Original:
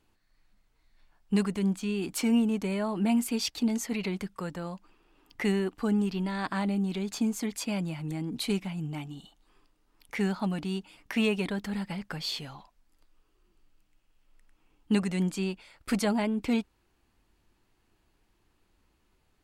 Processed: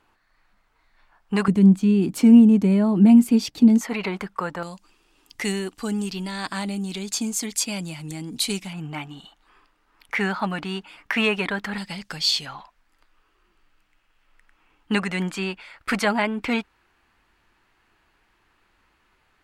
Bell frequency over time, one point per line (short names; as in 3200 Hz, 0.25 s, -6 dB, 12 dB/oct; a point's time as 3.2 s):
bell +14 dB 2.5 oct
1200 Hz
from 1.48 s 190 Hz
from 3.81 s 1100 Hz
from 4.63 s 7500 Hz
from 8.73 s 1500 Hz
from 11.78 s 5600 Hz
from 12.46 s 1600 Hz